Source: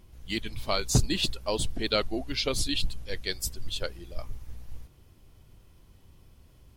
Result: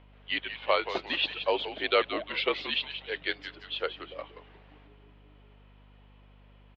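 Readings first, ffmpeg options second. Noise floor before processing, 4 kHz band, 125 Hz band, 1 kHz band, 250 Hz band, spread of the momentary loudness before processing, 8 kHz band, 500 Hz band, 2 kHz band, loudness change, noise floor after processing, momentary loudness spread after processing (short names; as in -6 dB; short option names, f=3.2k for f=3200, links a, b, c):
-57 dBFS, -0.5 dB, -20.5 dB, +5.0 dB, -7.0 dB, 18 LU, under -30 dB, +2.5 dB, +5.5 dB, -0.5 dB, -56 dBFS, 11 LU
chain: -filter_complex "[0:a]asplit=5[a][b][c][d][e];[b]adelay=177,afreqshift=-120,volume=-10dB[f];[c]adelay=354,afreqshift=-240,volume=-18.4dB[g];[d]adelay=531,afreqshift=-360,volume=-26.8dB[h];[e]adelay=708,afreqshift=-480,volume=-35.2dB[i];[a][f][g][h][i]amix=inputs=5:normalize=0,highpass=f=490:t=q:w=0.5412,highpass=f=490:t=q:w=1.307,lowpass=f=3.3k:t=q:w=0.5176,lowpass=f=3.3k:t=q:w=0.7071,lowpass=f=3.3k:t=q:w=1.932,afreqshift=-53,aeval=exprs='val(0)+0.001*(sin(2*PI*50*n/s)+sin(2*PI*2*50*n/s)/2+sin(2*PI*3*50*n/s)/3+sin(2*PI*4*50*n/s)/4+sin(2*PI*5*50*n/s)/5)':c=same,volume=5dB"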